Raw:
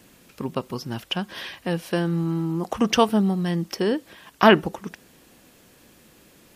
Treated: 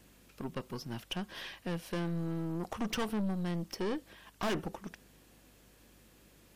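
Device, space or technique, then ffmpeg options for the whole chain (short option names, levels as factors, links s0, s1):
valve amplifier with mains hum: -af "aeval=exprs='(tanh(14.1*val(0)+0.45)-tanh(0.45))/14.1':c=same,aeval=exprs='val(0)+0.00126*(sin(2*PI*50*n/s)+sin(2*PI*2*50*n/s)/2+sin(2*PI*3*50*n/s)/3+sin(2*PI*4*50*n/s)/4+sin(2*PI*5*50*n/s)/5)':c=same,volume=0.447"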